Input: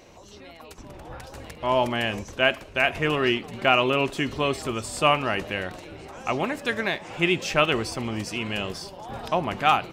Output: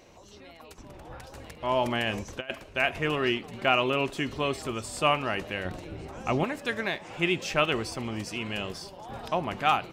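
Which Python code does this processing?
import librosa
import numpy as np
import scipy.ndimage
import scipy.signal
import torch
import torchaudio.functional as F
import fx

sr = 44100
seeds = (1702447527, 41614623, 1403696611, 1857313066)

y = fx.over_compress(x, sr, threshold_db=-26.0, ratio=-0.5, at=(1.85, 2.5))
y = fx.low_shelf(y, sr, hz=360.0, db=9.5, at=(5.65, 6.44))
y = y * 10.0 ** (-4.0 / 20.0)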